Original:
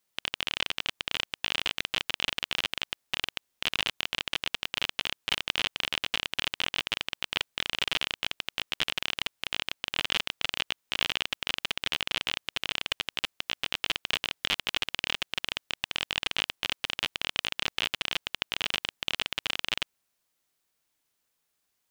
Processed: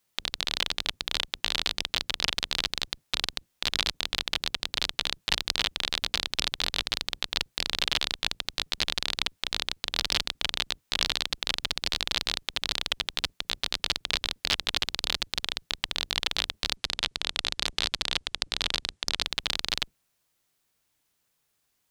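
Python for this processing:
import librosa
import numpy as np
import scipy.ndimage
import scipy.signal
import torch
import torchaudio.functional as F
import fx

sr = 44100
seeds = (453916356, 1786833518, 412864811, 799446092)

y = fx.octave_divider(x, sr, octaves=1, level_db=2.0)
y = fx.steep_lowpass(y, sr, hz=9800.0, slope=36, at=(16.76, 19.24))
y = fx.doppler_dist(y, sr, depth_ms=0.8)
y = y * librosa.db_to_amplitude(3.0)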